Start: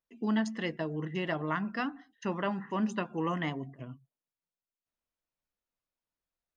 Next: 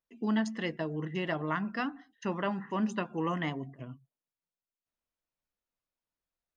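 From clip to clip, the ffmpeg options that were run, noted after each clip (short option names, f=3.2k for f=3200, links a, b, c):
-af anull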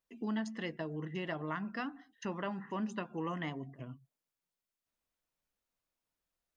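-af "acompressor=threshold=-52dB:ratio=1.5,volume=2.5dB"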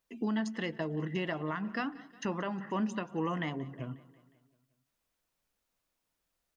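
-af "alimiter=level_in=5.5dB:limit=-24dB:level=0:latency=1:release=280,volume=-5.5dB,aecho=1:1:180|360|540|720|900:0.0944|0.0548|0.0318|0.0184|0.0107,volume=6dB"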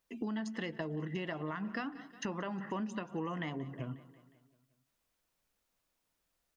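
-af "acompressor=threshold=-36dB:ratio=4,volume=1dB"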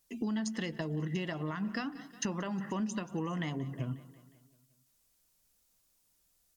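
-af "bass=f=250:g=6,treble=f=4k:g=13" -ar 48000 -c:a libvorbis -b:a 128k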